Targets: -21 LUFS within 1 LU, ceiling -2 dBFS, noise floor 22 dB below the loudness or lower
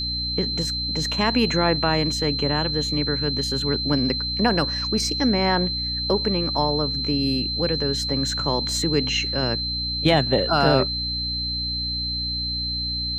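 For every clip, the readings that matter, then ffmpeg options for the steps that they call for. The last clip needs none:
hum 60 Hz; harmonics up to 300 Hz; hum level -30 dBFS; steady tone 4100 Hz; tone level -25 dBFS; loudness -22.0 LUFS; peak -4.0 dBFS; loudness target -21.0 LUFS
-> -af "bandreject=f=60:t=h:w=4,bandreject=f=120:t=h:w=4,bandreject=f=180:t=h:w=4,bandreject=f=240:t=h:w=4,bandreject=f=300:t=h:w=4"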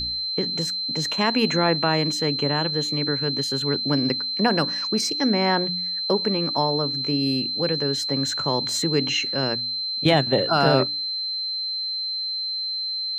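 hum none; steady tone 4100 Hz; tone level -25 dBFS
-> -af "bandreject=f=4.1k:w=30"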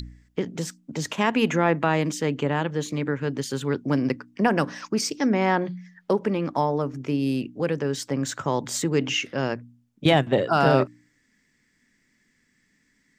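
steady tone none; loudness -25.0 LUFS; peak -5.0 dBFS; loudness target -21.0 LUFS
-> -af "volume=4dB,alimiter=limit=-2dB:level=0:latency=1"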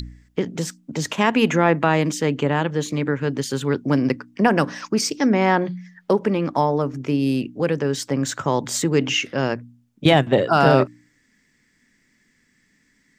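loudness -21.0 LUFS; peak -2.0 dBFS; noise floor -64 dBFS

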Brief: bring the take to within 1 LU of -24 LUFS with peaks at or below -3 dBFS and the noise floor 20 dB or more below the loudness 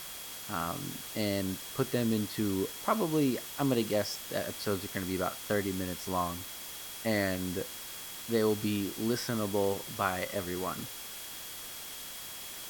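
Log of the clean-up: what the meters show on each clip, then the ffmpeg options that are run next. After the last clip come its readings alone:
steady tone 3300 Hz; tone level -51 dBFS; noise floor -43 dBFS; noise floor target -53 dBFS; loudness -33.0 LUFS; peak -13.0 dBFS; loudness target -24.0 LUFS
-> -af "bandreject=f=3.3k:w=30"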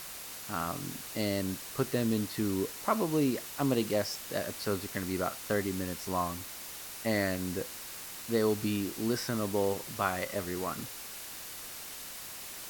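steady tone none; noise floor -44 dBFS; noise floor target -54 dBFS
-> -af "afftdn=nr=10:nf=-44"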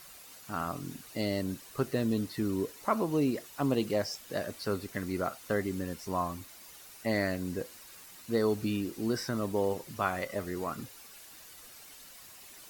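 noise floor -52 dBFS; noise floor target -53 dBFS
-> -af "afftdn=nr=6:nf=-52"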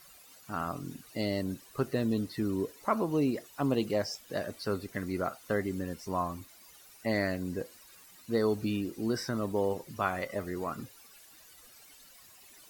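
noise floor -56 dBFS; loudness -33.0 LUFS; peak -13.5 dBFS; loudness target -24.0 LUFS
-> -af "volume=9dB"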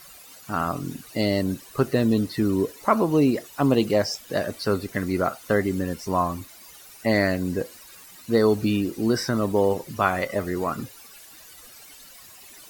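loudness -24.0 LUFS; peak -4.5 dBFS; noise floor -47 dBFS

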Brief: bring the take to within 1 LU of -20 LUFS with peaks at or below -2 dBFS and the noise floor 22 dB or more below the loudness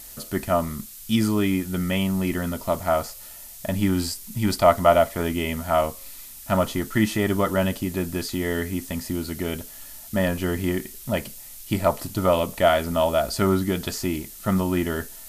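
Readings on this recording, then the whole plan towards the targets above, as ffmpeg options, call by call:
noise floor -42 dBFS; noise floor target -46 dBFS; loudness -24.0 LUFS; peak -4.0 dBFS; loudness target -20.0 LUFS
-> -af "afftdn=nr=6:nf=-42"
-af "volume=4dB,alimiter=limit=-2dB:level=0:latency=1"

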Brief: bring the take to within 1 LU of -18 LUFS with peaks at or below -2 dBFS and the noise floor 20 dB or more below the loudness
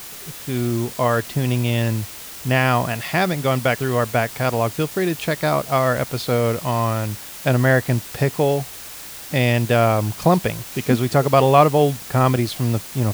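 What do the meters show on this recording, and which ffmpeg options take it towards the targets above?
noise floor -36 dBFS; noise floor target -40 dBFS; loudness -20.0 LUFS; peak -1.5 dBFS; loudness target -18.0 LUFS
-> -af "afftdn=nr=6:nf=-36"
-af "volume=2dB,alimiter=limit=-2dB:level=0:latency=1"

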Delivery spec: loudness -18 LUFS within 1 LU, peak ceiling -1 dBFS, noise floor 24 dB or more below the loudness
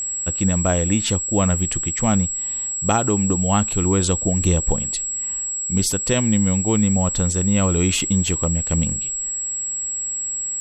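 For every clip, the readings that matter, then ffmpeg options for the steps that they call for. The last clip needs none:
steady tone 7700 Hz; tone level -23 dBFS; loudness -19.5 LUFS; peak -5.5 dBFS; loudness target -18.0 LUFS
-> -af "bandreject=f=7.7k:w=30"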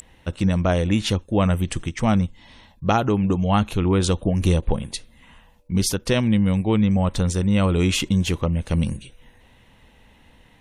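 steady tone none; loudness -21.5 LUFS; peak -6.5 dBFS; loudness target -18.0 LUFS
-> -af "volume=3.5dB"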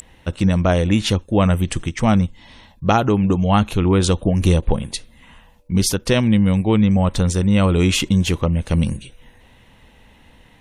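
loudness -18.0 LUFS; peak -3.0 dBFS; noise floor -51 dBFS

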